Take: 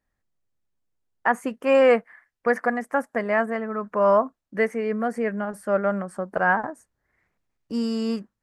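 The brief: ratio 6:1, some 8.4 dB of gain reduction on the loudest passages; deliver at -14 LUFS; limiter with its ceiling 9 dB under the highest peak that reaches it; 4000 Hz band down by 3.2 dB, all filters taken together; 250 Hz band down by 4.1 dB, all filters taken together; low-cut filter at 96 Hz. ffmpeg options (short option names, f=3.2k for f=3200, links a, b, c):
-af "highpass=96,equalizer=f=250:t=o:g=-4.5,equalizer=f=4k:t=o:g=-5,acompressor=threshold=-23dB:ratio=6,volume=17.5dB,alimiter=limit=-2.5dB:level=0:latency=1"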